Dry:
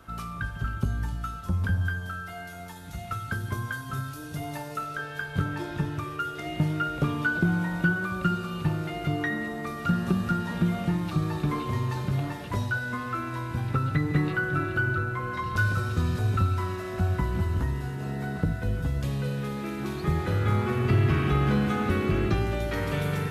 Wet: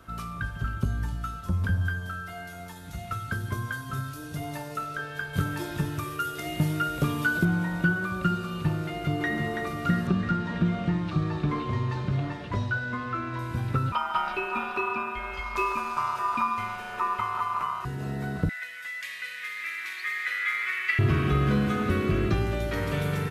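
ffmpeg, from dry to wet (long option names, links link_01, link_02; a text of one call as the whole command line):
ffmpeg -i in.wav -filter_complex "[0:a]asettb=1/sr,asplit=3[link_01][link_02][link_03];[link_01]atrim=end=5.334[link_04];[link_02]atrim=start=5.33:end=7.45,asetpts=PTS-STARTPTS,afade=type=in:duration=0.004:curve=qsin,afade=type=out:start_time=2.116:duration=0.004:curve=qsin,aemphasis=mode=production:type=50kf[link_05];[link_03]atrim=start=7.446[link_06];[link_04][link_05]acrossfade=duration=0.004:curve1=hsin:curve2=qsin[link_07];[link_07][link_06]acrossfade=duration=0.004:curve1=qsin:curve2=hsin,asplit=2[link_08][link_09];[link_09]afade=type=in:start_time=8.87:duration=0.01,afade=type=out:start_time=9.35:duration=0.01,aecho=0:1:330|660|990|1320|1650|1980|2310|2640|2970:0.630957|0.378574|0.227145|0.136287|0.0817721|0.0490632|0.0294379|0.0176628|0.0105977[link_10];[link_08][link_10]amix=inputs=2:normalize=0,asettb=1/sr,asplit=3[link_11][link_12][link_13];[link_11]atrim=end=10.074[link_14];[link_12]atrim=start=10.07:end=13.39,asetpts=PTS-STARTPTS,afade=type=in:duration=0.004:curve=qsin,afade=type=out:start_time=3.316:duration=0.004:curve=qsin,lowpass=4700[link_15];[link_13]atrim=start=13.386[link_16];[link_14][link_15]acrossfade=duration=0.004:curve1=hsin:curve2=qsin[link_17];[link_17][link_16]acrossfade=duration=0.004:curve1=qsin:curve2=hsin,asettb=1/sr,asplit=3[link_18][link_19][link_20];[link_18]atrim=end=13.924[link_21];[link_19]atrim=start=13.92:end=17.85,asetpts=PTS-STARTPTS,afade=type=in:duration=0.004:curve=qsin,afade=type=out:start_time=3.926:duration=0.004:curve=qsin,aeval=exprs='val(0)*sin(2*PI*1100*n/s)':channel_layout=same[link_22];[link_20]atrim=start=17.846[link_23];[link_21][link_22]acrossfade=duration=0.004:curve1=hsin:curve2=qsin[link_24];[link_24][link_23]acrossfade=duration=0.004:curve1=qsin:curve2=hsin,asettb=1/sr,asplit=3[link_25][link_26][link_27];[link_25]atrim=end=18.494[link_28];[link_26]atrim=start=18.49:end=20.99,asetpts=PTS-STARTPTS,afade=type=in:duration=0.004:curve=qsin,afade=type=out:start_time=2.496:duration=0.004:curve=qsin,highpass=frequency=2000:width_type=q:width=7.2[link_29];[link_27]atrim=start=20.986[link_30];[link_28][link_29]acrossfade=duration=0.004:curve1=hsin:curve2=qsin[link_31];[link_31][link_30]acrossfade=duration=0.004:curve1=qsin:curve2=hsin,bandreject=frequency=830:width=12" out.wav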